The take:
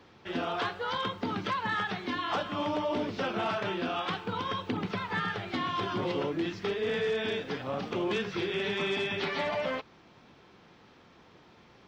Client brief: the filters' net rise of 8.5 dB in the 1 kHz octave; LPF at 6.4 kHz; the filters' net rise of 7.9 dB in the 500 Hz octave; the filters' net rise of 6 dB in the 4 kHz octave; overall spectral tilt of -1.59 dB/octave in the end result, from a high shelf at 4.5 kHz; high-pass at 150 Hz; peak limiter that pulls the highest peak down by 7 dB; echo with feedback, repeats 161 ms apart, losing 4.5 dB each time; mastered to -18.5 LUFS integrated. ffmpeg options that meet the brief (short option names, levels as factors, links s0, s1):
-af "highpass=150,lowpass=6400,equalizer=f=500:t=o:g=8,equalizer=f=1000:t=o:g=7.5,equalizer=f=4000:t=o:g=5,highshelf=f=4500:g=5.5,alimiter=limit=0.106:level=0:latency=1,aecho=1:1:161|322|483|644|805|966|1127|1288|1449:0.596|0.357|0.214|0.129|0.0772|0.0463|0.0278|0.0167|0.01,volume=2.37"